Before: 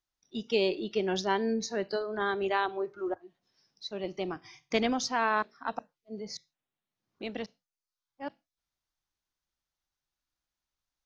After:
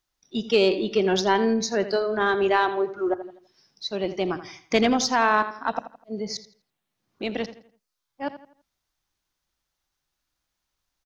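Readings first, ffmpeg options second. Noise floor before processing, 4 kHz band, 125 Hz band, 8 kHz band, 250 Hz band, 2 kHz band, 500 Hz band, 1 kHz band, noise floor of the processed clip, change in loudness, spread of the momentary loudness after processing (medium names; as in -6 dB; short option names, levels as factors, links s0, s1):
under -85 dBFS, +7.5 dB, +8.0 dB, no reading, +8.0 dB, +7.5 dB, +8.0 dB, +8.0 dB, -82 dBFS, +7.5 dB, 14 LU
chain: -filter_complex "[0:a]asplit=2[s0][s1];[s1]adelay=83,lowpass=f=3900:p=1,volume=0.224,asplit=2[s2][s3];[s3]adelay=83,lowpass=f=3900:p=1,volume=0.38,asplit=2[s4][s5];[s5]adelay=83,lowpass=f=3900:p=1,volume=0.38,asplit=2[s6][s7];[s7]adelay=83,lowpass=f=3900:p=1,volume=0.38[s8];[s0][s2][s4][s6][s8]amix=inputs=5:normalize=0,asplit=2[s9][s10];[s10]asoftclip=type=tanh:threshold=0.0668,volume=0.596[s11];[s9][s11]amix=inputs=2:normalize=0,volume=1.68"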